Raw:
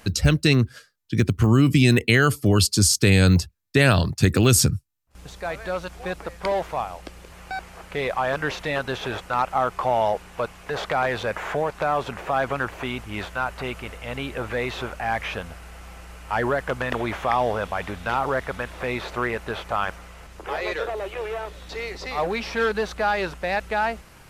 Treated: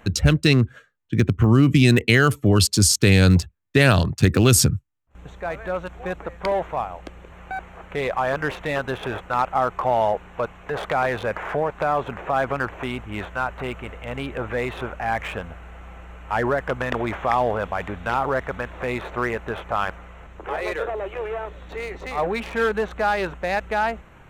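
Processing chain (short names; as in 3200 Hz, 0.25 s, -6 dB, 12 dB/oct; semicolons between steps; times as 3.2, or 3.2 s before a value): Wiener smoothing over 9 samples; gain +1.5 dB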